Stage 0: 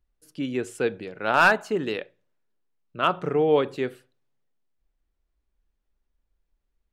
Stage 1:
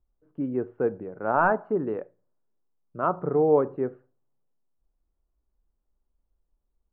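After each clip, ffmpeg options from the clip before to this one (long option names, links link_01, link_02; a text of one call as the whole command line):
ffmpeg -i in.wav -af "lowpass=frequency=1200:width=0.5412,lowpass=frequency=1200:width=1.3066" out.wav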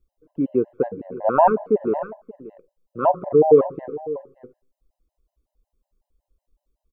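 ffmpeg -i in.wav -af "equalizer=frequency=100:width_type=o:width=0.67:gain=-7,equalizer=frequency=630:width_type=o:width=0.67:gain=6,equalizer=frequency=1600:width_type=o:width=0.67:gain=-8,aecho=1:1:580:0.158,afftfilt=real='re*gt(sin(2*PI*5.4*pts/sr)*(1-2*mod(floor(b*sr/1024/530),2)),0)':imag='im*gt(sin(2*PI*5.4*pts/sr)*(1-2*mod(floor(b*sr/1024/530),2)),0)':win_size=1024:overlap=0.75,volume=7.5dB" out.wav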